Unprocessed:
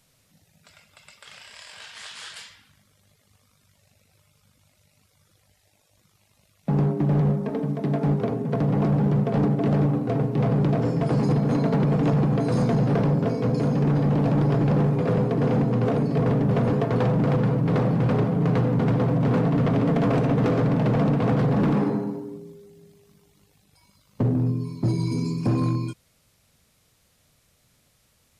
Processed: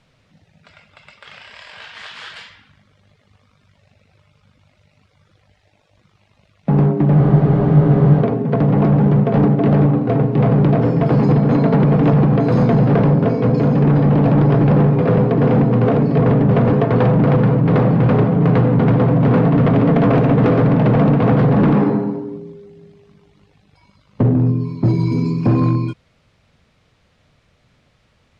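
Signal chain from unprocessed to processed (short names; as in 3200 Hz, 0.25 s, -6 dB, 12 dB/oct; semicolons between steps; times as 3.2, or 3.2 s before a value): LPF 3100 Hz 12 dB/oct; spectral freeze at 7.18, 1.02 s; gain +8 dB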